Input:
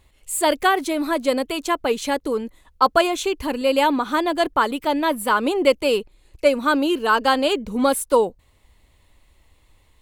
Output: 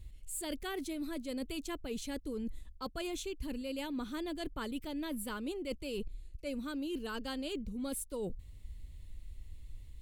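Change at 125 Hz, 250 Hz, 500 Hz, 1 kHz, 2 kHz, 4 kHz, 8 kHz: can't be measured, −14.5 dB, −21.5 dB, −27.0 dB, −22.0 dB, −17.5 dB, −14.5 dB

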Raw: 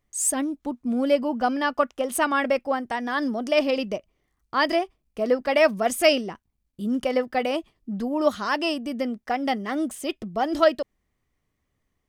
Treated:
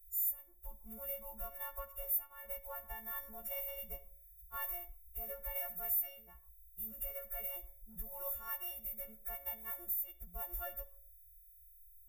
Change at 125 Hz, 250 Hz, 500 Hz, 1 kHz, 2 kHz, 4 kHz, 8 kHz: can't be measured, −36.0 dB, −28.5 dB, −25.5 dB, −24.5 dB, below −25 dB, −19.5 dB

